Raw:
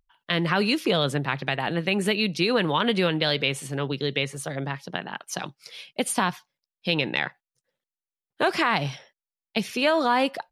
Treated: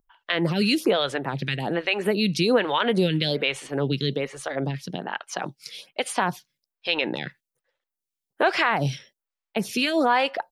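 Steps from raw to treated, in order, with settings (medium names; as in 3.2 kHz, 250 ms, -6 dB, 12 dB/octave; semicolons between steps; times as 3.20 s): dynamic bell 1.1 kHz, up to -5 dB, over -42 dBFS, Q 4.3; in parallel at 0 dB: peak limiter -17.5 dBFS, peak gain reduction 10.5 dB; on the sum: lamp-driven phase shifter 1.2 Hz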